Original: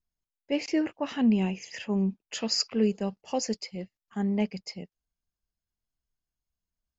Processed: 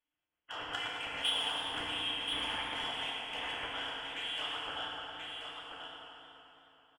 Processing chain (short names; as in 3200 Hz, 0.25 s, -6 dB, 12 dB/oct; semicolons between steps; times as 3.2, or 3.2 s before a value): spectral limiter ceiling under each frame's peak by 29 dB; steep high-pass 210 Hz 36 dB/oct; in parallel at 0 dB: compressor 16:1, threshold -33 dBFS, peak gain reduction 15 dB; on the sum: limiter -15.5 dBFS, peak gain reduction 8.5 dB; inverted band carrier 3600 Hz; soft clip -21 dBFS, distortion -16 dB; level quantiser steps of 13 dB; on a send: echo 1.031 s -6 dB; on the sum: FDN reverb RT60 3.3 s, high-frequency decay 0.65×, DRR -3.5 dB; warbling echo 0.107 s, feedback 79%, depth 81 cents, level -11.5 dB; gain -4 dB